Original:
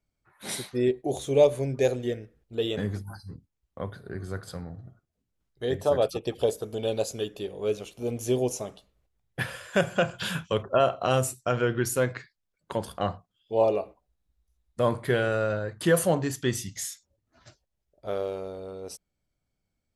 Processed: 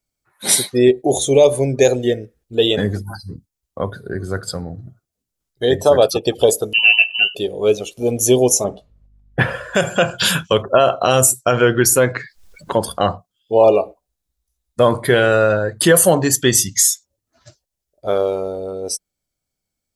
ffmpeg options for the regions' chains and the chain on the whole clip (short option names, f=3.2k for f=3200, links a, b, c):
-filter_complex "[0:a]asettb=1/sr,asplit=3[a][b][c];[a]atrim=end=6.734[d];[b]atrim=start=6.73:end=7.35,asetpts=PTS-STARTPTS,afade=t=in:d=0.004:c=qsin,afade=t=out:st=0.616:d=0.004:c=qsin,highpass=190,aecho=1:1:4:0.7,atrim=end_sample=27342,lowpass=f=2.7k:t=q:w=0.5098,lowpass=f=2.7k:t=q:w=0.6013,lowpass=f=2.7k:t=q:w=0.9,lowpass=f=2.7k:t=q:w=2.563,afreqshift=-3200[e];[c]atrim=start=7.346[f];[d][e]acrossfade=d=0.004:c1=hsin:c2=qsin[g];[g][f]acrossfade=d=0.004:c1=qsin:c2=hsin,asettb=1/sr,asplit=3[h][i][j];[h]atrim=end=8.644[k];[i]atrim=start=8.64:end=9.75,asetpts=PTS-STARTPTS,afade=t=in:d=0.004:c=qsin,afade=t=out:st=1.106:d=0.004:c=qsin,lowpass=f=1k:p=1,acontrast=51,aeval=exprs='val(0)+0.00141*(sin(2*PI*50*n/s)+sin(2*PI*2*50*n/s)/2+sin(2*PI*3*50*n/s)/3+sin(2*PI*4*50*n/s)/4+sin(2*PI*5*50*n/s)/5)':c=same[l];[j]atrim=start=9.746[m];[k][l]acrossfade=d=0.004:c1=hsin:c2=qsin[n];[n][m]acrossfade=d=0.004:c1=qsin:c2=hsin,asettb=1/sr,asplit=3[o][p][q];[o]atrim=end=11.894[r];[p]atrim=start=11.89:end=12.81,asetpts=PTS-STARTPTS,afade=t=in:d=0.004:c=qsin,afade=t=out:st=0.916:d=0.004:c=qsin,highshelf=f=6.1k:g=-8,acompressor=mode=upward:threshold=-30dB:ratio=2.5:attack=3.2:release=140:knee=2.83:detection=peak[s];[q]atrim=start=12.806[t];[r][s]acrossfade=d=0.004:c1=hsin:c2=qsin[u];[u][t]acrossfade=d=0.004:c1=qsin:c2=hsin,afftdn=nr=13:nf=-45,bass=f=250:g=-4,treble=f=4k:g=10,alimiter=level_in=14dB:limit=-1dB:release=50:level=0:latency=1,volume=-1dB"